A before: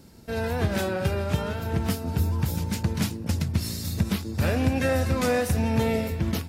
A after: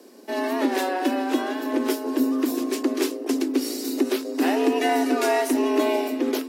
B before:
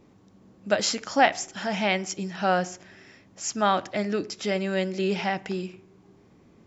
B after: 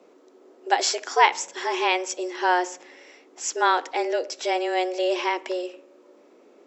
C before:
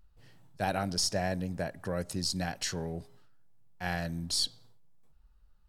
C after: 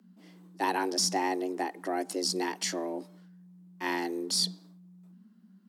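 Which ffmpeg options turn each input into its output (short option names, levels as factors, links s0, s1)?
-af "afreqshift=180,volume=1.26"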